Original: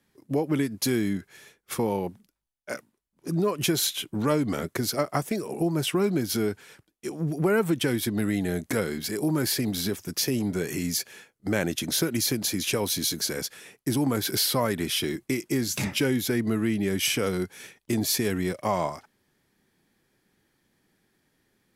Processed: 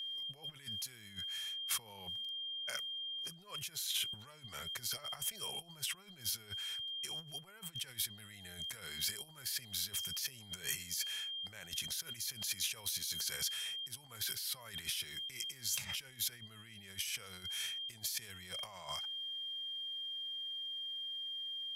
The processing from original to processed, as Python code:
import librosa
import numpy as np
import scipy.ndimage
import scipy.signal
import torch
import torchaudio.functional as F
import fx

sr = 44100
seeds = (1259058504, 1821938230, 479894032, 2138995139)

y = x + 10.0 ** (-41.0 / 20.0) * np.sin(2.0 * np.pi * 3200.0 * np.arange(len(x)) / sr)
y = fx.over_compress(y, sr, threshold_db=-34.0, ratio=-1.0)
y = fx.tone_stack(y, sr, knobs='10-0-10')
y = y * 10.0 ** (-3.0 / 20.0)